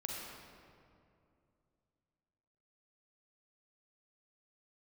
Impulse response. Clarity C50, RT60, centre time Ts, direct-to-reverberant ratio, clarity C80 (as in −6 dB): −1.0 dB, 2.5 s, 121 ms, −2.5 dB, 0.5 dB